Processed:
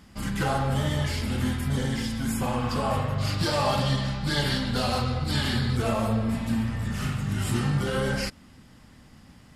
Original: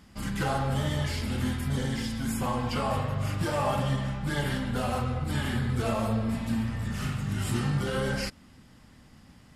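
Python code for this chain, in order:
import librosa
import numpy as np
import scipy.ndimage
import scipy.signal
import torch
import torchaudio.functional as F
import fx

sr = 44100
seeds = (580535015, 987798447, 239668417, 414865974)

y = fx.spec_repair(x, sr, seeds[0], start_s=2.48, length_s=0.36, low_hz=960.0, high_hz=3200.0, source='both')
y = fx.peak_eq(y, sr, hz=4400.0, db=14.0, octaves=0.68, at=(3.18, 5.77))
y = y * librosa.db_to_amplitude(2.5)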